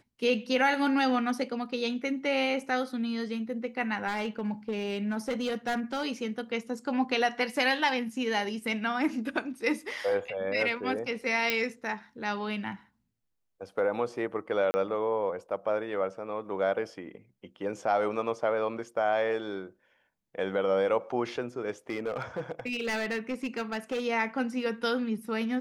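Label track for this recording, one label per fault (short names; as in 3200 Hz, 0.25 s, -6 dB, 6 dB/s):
4.070000	6.050000	clipped -26 dBFS
11.500000	11.500000	pop -11 dBFS
14.710000	14.740000	gap 30 ms
21.890000	24.050000	clipped -27 dBFS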